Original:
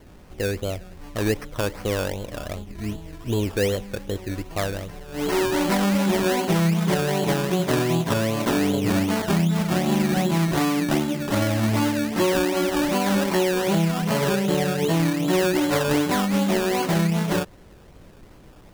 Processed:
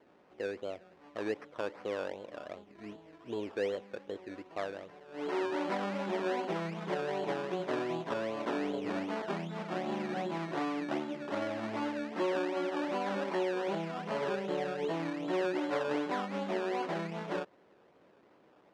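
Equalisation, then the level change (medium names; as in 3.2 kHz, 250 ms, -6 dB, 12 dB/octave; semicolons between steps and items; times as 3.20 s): high-pass 370 Hz 12 dB/octave; tape spacing loss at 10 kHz 26 dB; -7.0 dB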